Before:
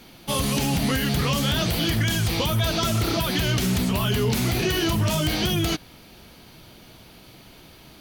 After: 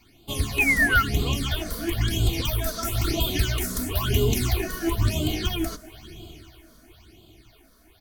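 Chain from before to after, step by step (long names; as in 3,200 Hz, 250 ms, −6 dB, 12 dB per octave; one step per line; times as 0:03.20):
sub-octave generator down 1 octave, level −4 dB
0:02.33–0:04.53: high-shelf EQ 5,300 Hz +6.5 dB
feedback delay with all-pass diffusion 642 ms, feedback 41%, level −13 dB
all-pass phaser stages 8, 1 Hz, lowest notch 100–1,800 Hz
0:00.58–0:01.03: sound drawn into the spectrogram fall 1,300–2,600 Hz −21 dBFS
comb filter 2.8 ms, depth 57%
expander for the loud parts 1.5 to 1, over −32 dBFS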